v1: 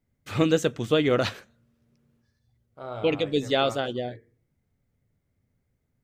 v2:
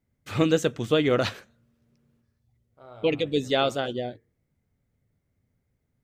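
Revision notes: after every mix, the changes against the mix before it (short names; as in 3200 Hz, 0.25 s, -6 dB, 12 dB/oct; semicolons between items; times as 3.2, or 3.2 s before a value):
second voice -10.5 dB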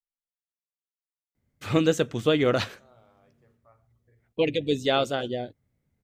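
first voice: entry +1.35 s; second voice -11.5 dB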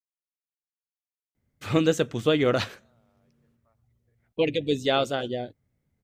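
second voice -8.0 dB; reverb: off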